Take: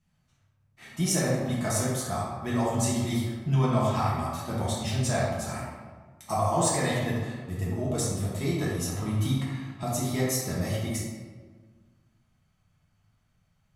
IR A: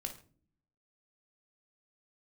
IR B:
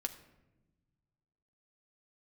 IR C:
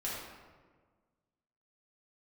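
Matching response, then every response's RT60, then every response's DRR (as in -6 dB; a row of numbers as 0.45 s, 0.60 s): C; no single decay rate, 1.0 s, 1.5 s; 4.5 dB, 5.0 dB, -7.5 dB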